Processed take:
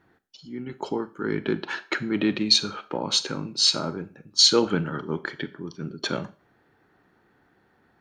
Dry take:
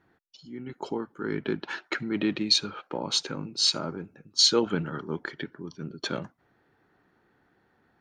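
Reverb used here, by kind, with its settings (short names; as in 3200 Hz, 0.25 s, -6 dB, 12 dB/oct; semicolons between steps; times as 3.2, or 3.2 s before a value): Schroeder reverb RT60 0.37 s, combs from 29 ms, DRR 14.5 dB; gain +3.5 dB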